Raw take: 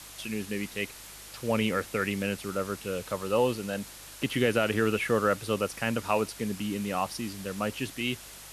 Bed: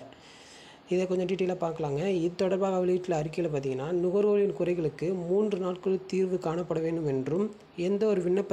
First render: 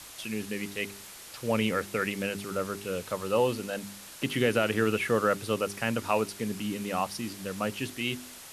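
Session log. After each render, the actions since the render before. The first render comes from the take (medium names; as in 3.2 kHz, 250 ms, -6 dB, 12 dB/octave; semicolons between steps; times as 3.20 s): de-hum 50 Hz, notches 8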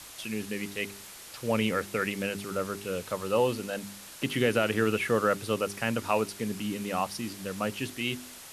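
no audible change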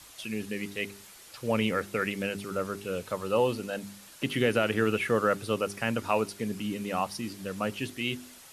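noise reduction 6 dB, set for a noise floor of -47 dBFS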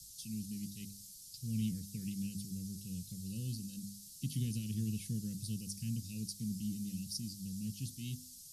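Chebyshev band-stop 180–4900 Hz, order 3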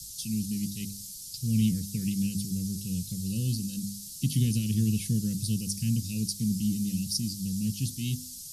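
trim +11 dB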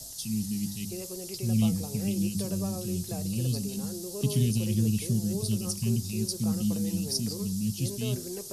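add bed -12.5 dB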